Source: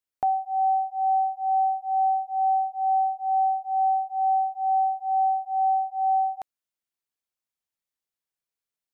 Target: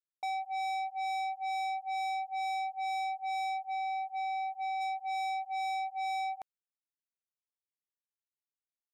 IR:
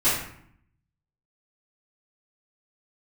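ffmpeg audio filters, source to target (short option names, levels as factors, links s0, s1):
-filter_complex "[0:a]agate=range=0.0224:threshold=0.0447:ratio=3:detection=peak,asplit=3[s0][s1][s2];[s0]afade=t=out:st=3.57:d=0.02[s3];[s1]acompressor=threshold=0.0562:ratio=12,afade=t=in:st=3.57:d=0.02,afade=t=out:st=4.8:d=0.02[s4];[s2]afade=t=in:st=4.8:d=0.02[s5];[s3][s4][s5]amix=inputs=3:normalize=0,asoftclip=type=tanh:threshold=0.0224"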